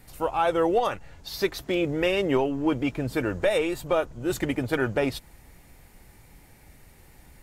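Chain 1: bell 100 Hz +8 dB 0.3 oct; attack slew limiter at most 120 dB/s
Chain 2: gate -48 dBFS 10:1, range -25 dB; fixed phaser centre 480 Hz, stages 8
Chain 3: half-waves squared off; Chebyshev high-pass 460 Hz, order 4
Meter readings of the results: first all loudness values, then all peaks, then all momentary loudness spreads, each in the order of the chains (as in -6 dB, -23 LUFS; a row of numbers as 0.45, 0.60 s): -28.0, -29.5, -24.5 LUFS; -11.5, -13.5, -6.0 dBFS; 12, 7, 9 LU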